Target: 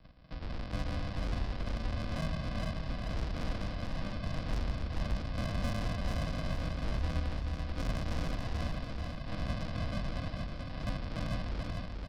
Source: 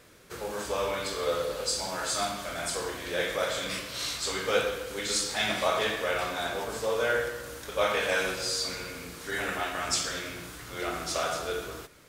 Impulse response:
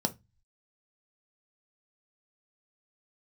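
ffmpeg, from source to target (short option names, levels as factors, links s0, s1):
-af "aresample=11025,acrusher=samples=23:mix=1:aa=0.000001,aresample=44100,asoftclip=type=tanh:threshold=0.0316,afreqshift=-81,aecho=1:1:437|874|1311|1748|2185:0.631|0.265|0.111|0.0467|0.0196"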